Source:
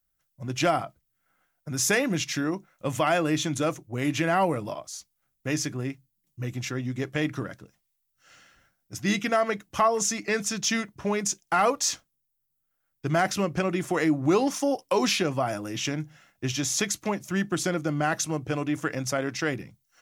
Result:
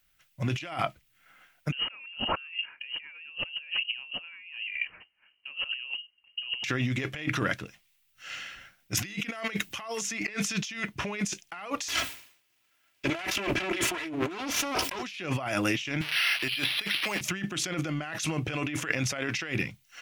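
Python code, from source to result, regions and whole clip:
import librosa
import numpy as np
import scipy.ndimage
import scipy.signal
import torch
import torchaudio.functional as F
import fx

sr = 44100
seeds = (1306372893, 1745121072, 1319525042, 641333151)

y = fx.chain(x, sr, fx.highpass(hz=110.0, slope=12),
    fx.freq_invert(carrier_hz=3000), at=(1.72, 6.64))
y = fx.chain(y, sr, fx.high_shelf(hz=9000.0, db=7.0),
    fx.band_squash(depth_pct=70), at=(8.97, 10.34))
y = fx.chain(y, sr, fx.lower_of_two(delay_ms=3.0),
    fx.highpass(hz=71.0, slope=12),
    fx.sustainer(db_per_s=100.0), at=(11.88, 15.03))
y = fx.chain(y, sr, fx.crossing_spikes(level_db=-22.5),
    fx.highpass(hz=440.0, slope=6),
    fx.resample_bad(factor=6, down='filtered', up='hold'), at=(16.01, 17.21))
y = fx.peak_eq(y, sr, hz=2600.0, db=14.0, octaves=1.4)
y = fx.over_compress(y, sr, threshold_db=-32.0, ratio=-1.0)
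y = y * librosa.db_to_amplitude(-3.0)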